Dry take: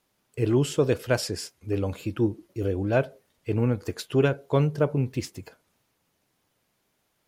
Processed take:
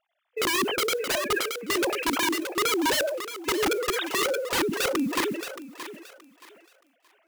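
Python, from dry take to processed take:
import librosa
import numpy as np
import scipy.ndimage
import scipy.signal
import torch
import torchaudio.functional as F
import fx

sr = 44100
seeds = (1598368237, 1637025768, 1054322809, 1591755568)

p1 = fx.sine_speech(x, sr)
p2 = 10.0 ** (-19.5 / 20.0) * np.tanh(p1 / 10.0 ** (-19.5 / 20.0))
p3 = p1 + F.gain(torch.from_numpy(p2), -3.0).numpy()
p4 = fx.env_lowpass_down(p3, sr, base_hz=450.0, full_db=-13.0)
p5 = (np.mod(10.0 ** (20.0 / 20.0) * p4 + 1.0, 2.0) - 1.0) / 10.0 ** (20.0 / 20.0)
p6 = fx.mod_noise(p5, sr, seeds[0], snr_db=28)
p7 = p6 + fx.echo_thinned(p6, sr, ms=624, feedback_pct=27, hz=410.0, wet_db=-11.5, dry=0)
y = fx.sustainer(p7, sr, db_per_s=44.0)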